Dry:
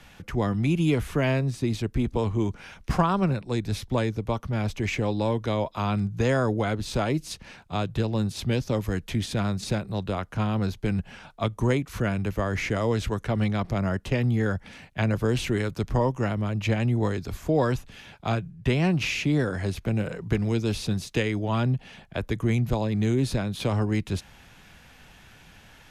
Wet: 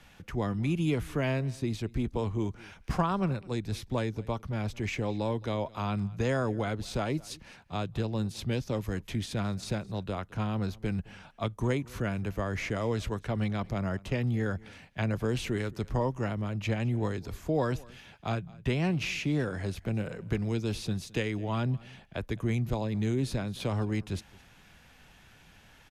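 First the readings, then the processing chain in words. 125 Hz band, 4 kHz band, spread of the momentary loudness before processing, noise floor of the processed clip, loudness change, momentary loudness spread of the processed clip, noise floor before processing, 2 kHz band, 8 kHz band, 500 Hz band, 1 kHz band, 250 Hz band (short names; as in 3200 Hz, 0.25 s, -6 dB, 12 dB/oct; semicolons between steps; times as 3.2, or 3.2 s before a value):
-5.5 dB, -5.5 dB, 6 LU, -57 dBFS, -5.5 dB, 6 LU, -52 dBFS, -5.5 dB, -5.5 dB, -5.5 dB, -5.5 dB, -5.5 dB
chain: echo 0.215 s -23 dB; gain -5.5 dB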